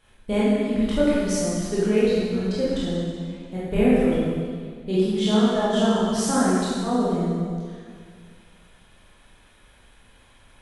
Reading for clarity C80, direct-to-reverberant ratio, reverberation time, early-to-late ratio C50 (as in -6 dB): -1.0 dB, -9.5 dB, 2.0 s, -3.5 dB